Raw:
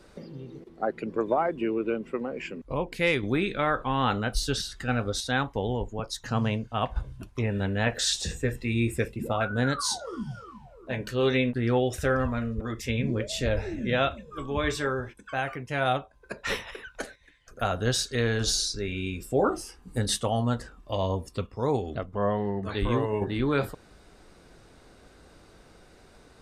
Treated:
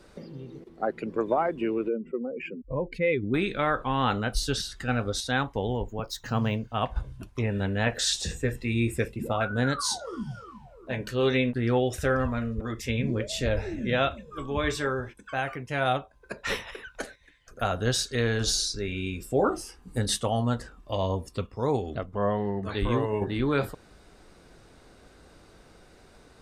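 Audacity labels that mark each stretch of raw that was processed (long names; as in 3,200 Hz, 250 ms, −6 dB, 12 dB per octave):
1.880000	3.340000	expanding power law on the bin magnitudes exponent 1.9
5.730000	6.750000	linearly interpolated sample-rate reduction rate divided by 2×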